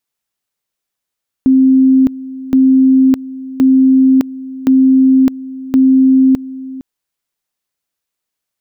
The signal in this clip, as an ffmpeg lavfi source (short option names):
-f lavfi -i "aevalsrc='pow(10,(-5-18*gte(mod(t,1.07),0.61))/20)*sin(2*PI*263*t)':d=5.35:s=44100"